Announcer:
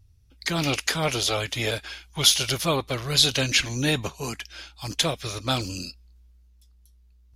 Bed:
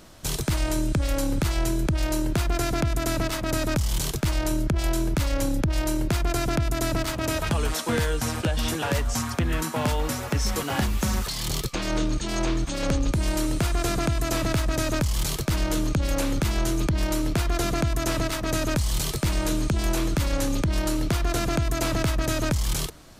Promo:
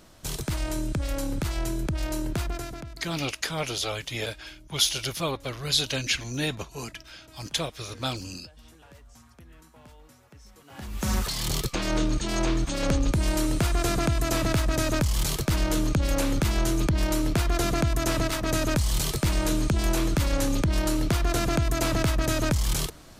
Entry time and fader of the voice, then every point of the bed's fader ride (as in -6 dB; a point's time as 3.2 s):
2.55 s, -5.0 dB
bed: 2.43 s -4.5 dB
3.26 s -26.5 dB
10.6 s -26.5 dB
11.11 s 0 dB